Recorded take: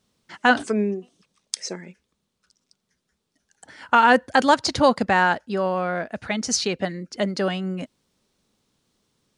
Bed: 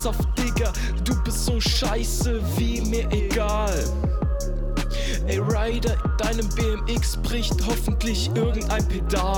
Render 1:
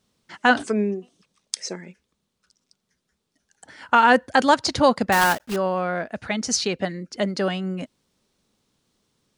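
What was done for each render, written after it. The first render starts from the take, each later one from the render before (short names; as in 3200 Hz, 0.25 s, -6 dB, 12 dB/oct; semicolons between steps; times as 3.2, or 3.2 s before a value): 5.12–5.57 block floating point 3-bit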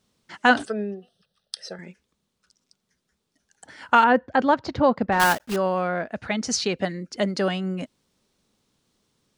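0.65–1.79 fixed phaser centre 1500 Hz, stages 8; 4.04–5.2 tape spacing loss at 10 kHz 32 dB; 5.87–6.76 LPF 3300 Hz -> 7400 Hz 6 dB/oct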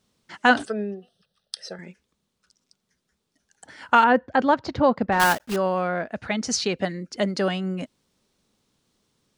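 nothing audible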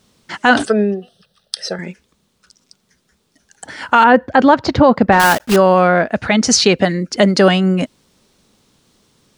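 maximiser +13.5 dB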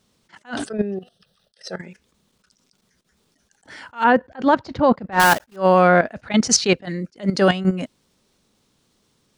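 level quantiser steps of 13 dB; attack slew limiter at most 270 dB/s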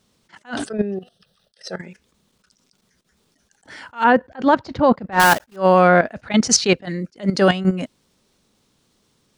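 gain +1 dB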